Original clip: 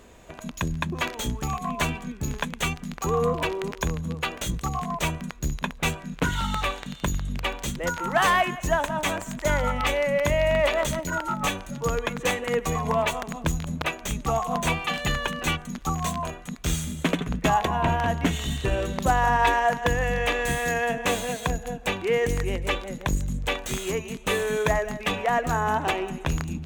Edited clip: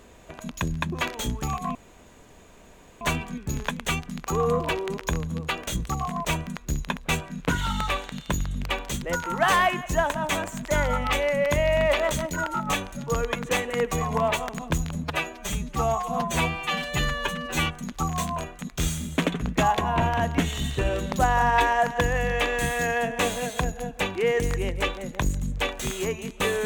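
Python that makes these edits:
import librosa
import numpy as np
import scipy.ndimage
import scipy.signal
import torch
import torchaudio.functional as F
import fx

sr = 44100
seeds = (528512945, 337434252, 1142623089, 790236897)

y = fx.edit(x, sr, fx.insert_room_tone(at_s=1.75, length_s=1.26),
    fx.stretch_span(start_s=13.78, length_s=1.75, factor=1.5), tone=tone)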